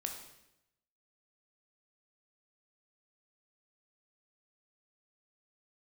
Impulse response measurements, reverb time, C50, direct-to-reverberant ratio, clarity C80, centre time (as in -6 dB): 0.85 s, 6.0 dB, 2.5 dB, 8.5 dB, 28 ms